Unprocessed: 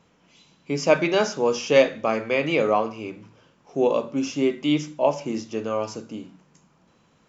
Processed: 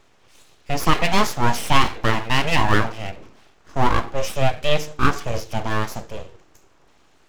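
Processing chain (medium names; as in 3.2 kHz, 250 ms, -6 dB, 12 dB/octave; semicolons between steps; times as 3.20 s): full-wave rectifier; loudness maximiser +7 dB; trim -1 dB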